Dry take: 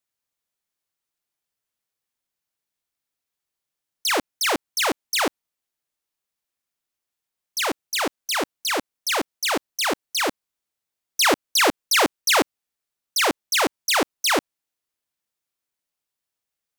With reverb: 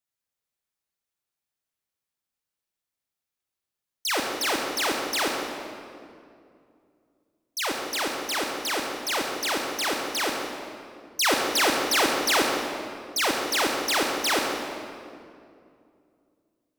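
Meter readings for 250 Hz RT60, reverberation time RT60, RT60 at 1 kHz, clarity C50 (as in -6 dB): 3.0 s, 2.4 s, 2.2 s, 1.5 dB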